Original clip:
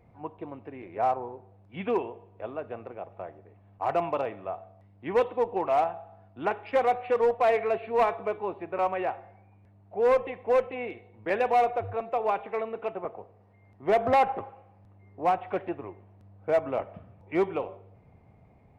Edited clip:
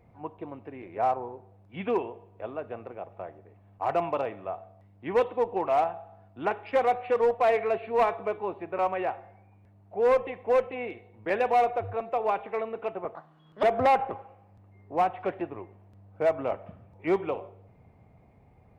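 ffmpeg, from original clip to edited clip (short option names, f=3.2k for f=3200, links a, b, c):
-filter_complex "[0:a]asplit=3[a][b][c];[a]atrim=end=13.154[d];[b]atrim=start=13.15:end=13.91,asetpts=PTS-STARTPTS,asetrate=69237,aresample=44100[e];[c]atrim=start=13.906[f];[d][e]acrossfade=d=0.004:c1=hsin:c2=hsin[g];[g][f]acrossfade=d=0.004:c1=hsin:c2=hsin"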